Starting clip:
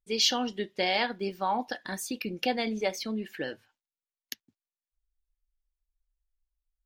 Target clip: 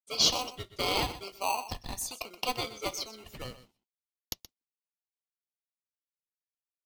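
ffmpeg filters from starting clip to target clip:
-filter_complex "[0:a]agate=range=0.0224:threshold=0.00178:ratio=3:detection=peak,highpass=920,acrossover=split=2700[s0][s1];[s0]acrusher=samples=25:mix=1:aa=0.000001[s2];[s2][s1]amix=inputs=2:normalize=0,aecho=1:1:125:0.188,volume=1.26"

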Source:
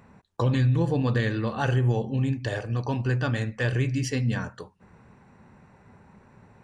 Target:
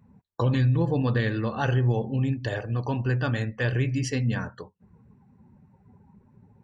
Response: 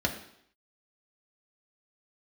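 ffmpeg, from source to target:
-af "afftdn=nr=18:nf=-48"

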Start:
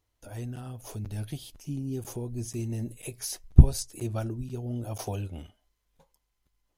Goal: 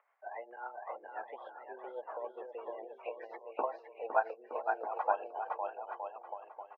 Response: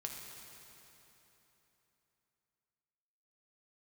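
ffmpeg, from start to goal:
-filter_complex "[0:a]afftdn=nr=30:nf=-47,acompressor=mode=upward:threshold=0.00501:ratio=2.5,asplit=2[s0][s1];[s1]aecho=0:1:510|918|1244|1506|1714:0.631|0.398|0.251|0.158|0.1[s2];[s0][s2]amix=inputs=2:normalize=0,tremolo=f=7.4:d=0.54,highpass=f=540:t=q:w=0.5412,highpass=f=540:t=q:w=1.307,lowpass=f=2000:t=q:w=0.5176,lowpass=f=2000:t=q:w=0.7071,lowpass=f=2000:t=q:w=1.932,afreqshift=110,volume=3.16"

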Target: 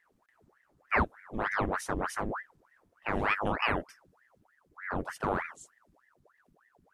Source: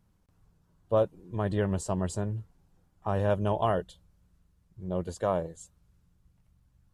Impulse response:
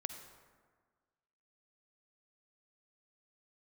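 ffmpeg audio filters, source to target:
-af "aeval=exprs='val(0)*sin(2*PI*1000*n/s+1000*0.9/3.3*sin(2*PI*3.3*n/s))':c=same"

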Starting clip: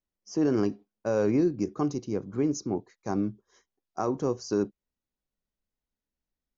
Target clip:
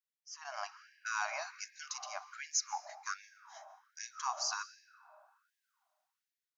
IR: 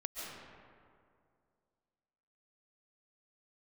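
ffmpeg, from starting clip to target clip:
-filter_complex "[0:a]asplit=2[s0][s1];[1:a]atrim=start_sample=2205[s2];[s1][s2]afir=irnorm=-1:irlink=0,volume=0.251[s3];[s0][s3]amix=inputs=2:normalize=0,dynaudnorm=f=210:g=7:m=4.47,afftfilt=real='re*gte(b*sr/1024,570*pow(1600/570,0.5+0.5*sin(2*PI*1.3*pts/sr)))':imag='im*gte(b*sr/1024,570*pow(1600/570,0.5+0.5*sin(2*PI*1.3*pts/sr)))':win_size=1024:overlap=0.75,volume=0.473"

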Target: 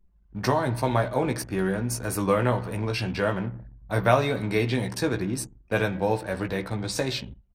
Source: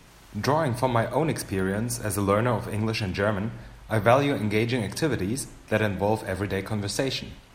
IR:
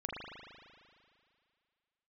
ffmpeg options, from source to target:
-filter_complex "[0:a]asplit=2[s0][s1];[s1]adelay=16,volume=0.501[s2];[s0][s2]amix=inputs=2:normalize=0,anlmdn=1,volume=0.841"

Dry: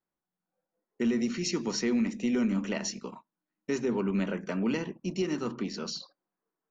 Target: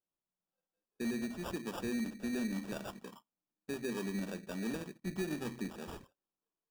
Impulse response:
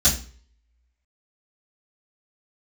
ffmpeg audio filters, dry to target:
-filter_complex "[0:a]asettb=1/sr,asplit=3[s0][s1][s2];[s0]atrim=end=5.044[s3];[s1]atrim=start=5.04:end=5.7,asetpts=PTS-STARTPTS,afade=t=in:d=0.004:c=qsin,afade=t=out:st=0.656:d=0.004:c=qsin,lowshelf=f=130:g=11.5[s4];[s2]atrim=start=5.696[s5];[s3][s4]acrossfade=d=0.004:c1=hsin:c2=qsin[s6];[s6][s5]acrossfade=d=0.004:c1=qsin:c2=hsin,acrusher=samples=21:mix=1:aa=0.000001,volume=0.355"

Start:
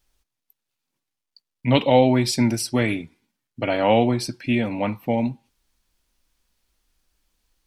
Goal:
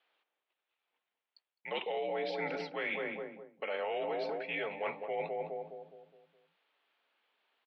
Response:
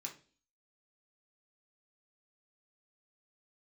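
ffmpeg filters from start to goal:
-filter_complex "[0:a]highpass=f=520:t=q:w=0.5412,highpass=f=520:t=q:w=1.307,lowpass=f=3500:t=q:w=0.5176,lowpass=f=3500:t=q:w=0.7071,lowpass=f=3500:t=q:w=1.932,afreqshift=-73,asplit=2[s0][s1];[s1]adelay=208,lowpass=f=830:p=1,volume=0.501,asplit=2[s2][s3];[s3]adelay=208,lowpass=f=830:p=1,volume=0.48,asplit=2[s4][s5];[s5]adelay=208,lowpass=f=830:p=1,volume=0.48,asplit=2[s6][s7];[s7]adelay=208,lowpass=f=830:p=1,volume=0.48,asplit=2[s8][s9];[s9]adelay=208,lowpass=f=830:p=1,volume=0.48,asplit=2[s10][s11];[s11]adelay=208,lowpass=f=830:p=1,volume=0.48[s12];[s0][s2][s4][s6][s8][s10][s12]amix=inputs=7:normalize=0,alimiter=limit=0.141:level=0:latency=1:release=12,areverse,acompressor=threshold=0.0141:ratio=5,areverse,volume=1.33"

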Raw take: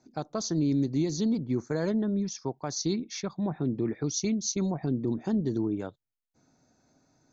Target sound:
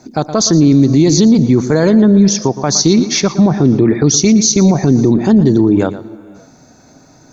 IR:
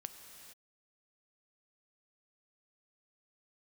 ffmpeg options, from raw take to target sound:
-filter_complex "[0:a]asplit=2[s0][s1];[1:a]atrim=start_sample=2205,adelay=116[s2];[s1][s2]afir=irnorm=-1:irlink=0,volume=0.282[s3];[s0][s3]amix=inputs=2:normalize=0,alimiter=level_in=15:limit=0.891:release=50:level=0:latency=1,volume=0.891"

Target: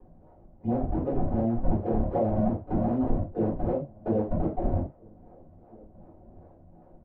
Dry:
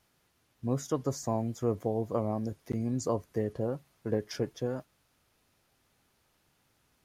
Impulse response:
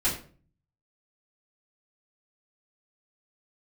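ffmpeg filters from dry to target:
-filter_complex "[0:a]highpass=f=74:w=0.5412,highpass=f=74:w=1.3066,aemphasis=mode=production:type=50fm,acrossover=split=460[s0][s1];[s1]acompressor=mode=upward:threshold=0.00158:ratio=2.5[s2];[s0][s2]amix=inputs=2:normalize=0,alimiter=limit=0.0708:level=0:latency=1,acompressor=threshold=0.0158:ratio=6,aresample=16000,acrusher=samples=22:mix=1:aa=0.000001:lfo=1:lforange=35.2:lforate=2.6,aresample=44100,lowpass=f=660:t=q:w=3.8,asplit=2[s3][s4];[s4]adelay=1633,volume=0.0501,highshelf=f=4000:g=-36.7[s5];[s3][s5]amix=inputs=2:normalize=0[s6];[1:a]atrim=start_sample=2205,afade=t=out:st=0.15:d=0.01,atrim=end_sample=7056[s7];[s6][s7]afir=irnorm=-1:irlink=0"

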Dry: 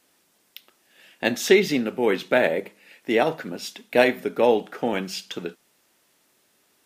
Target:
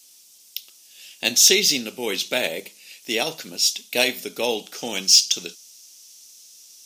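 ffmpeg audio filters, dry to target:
-af "asetnsamples=n=441:p=0,asendcmd='4.76 equalizer g 14.5',equalizer=f=5800:t=o:w=0.66:g=7.5,aexciter=amount=5.2:drive=7.2:freq=2500,volume=0.473"

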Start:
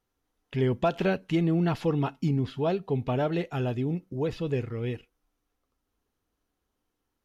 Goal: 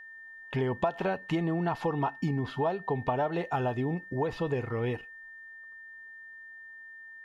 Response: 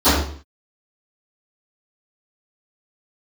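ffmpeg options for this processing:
-af "equalizer=f=900:t=o:w=1.2:g=14.5,acompressor=threshold=0.0501:ratio=6,aeval=exprs='val(0)+0.00562*sin(2*PI*1800*n/s)':c=same"

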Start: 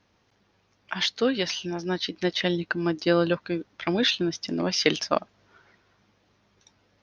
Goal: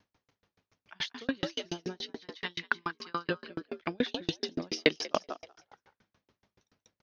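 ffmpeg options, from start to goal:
-filter_complex "[0:a]asettb=1/sr,asplit=3[s0][s1][s2];[s0]atrim=end=2.204[s3];[s1]atrim=start=2.2:end=3.29,asetpts=PTS-STARTPTS,afade=t=in:d=0.004:c=qsin,afade=t=out:st=1.086:d=0.004:c=qsin,lowshelf=f=770:t=q:w=3:g=-9.5[s4];[s2]atrim=start=3.286[s5];[s3][s4]acrossfade=d=0.004:c1=hsin:c2=qsin[s6];[s6][s5]acrossfade=d=0.004:c1=qsin:c2=hsin,asplit=5[s7][s8][s9][s10][s11];[s8]adelay=189,afreqshift=63,volume=0.501[s12];[s9]adelay=378,afreqshift=126,volume=0.166[s13];[s10]adelay=567,afreqshift=189,volume=0.0543[s14];[s11]adelay=756,afreqshift=252,volume=0.018[s15];[s7][s12][s13][s14][s15]amix=inputs=5:normalize=0,aeval=exprs='val(0)*pow(10,-40*if(lt(mod(7*n/s,1),2*abs(7)/1000),1-mod(7*n/s,1)/(2*abs(7)/1000),(mod(7*n/s,1)-2*abs(7)/1000)/(1-2*abs(7)/1000))/20)':c=same"

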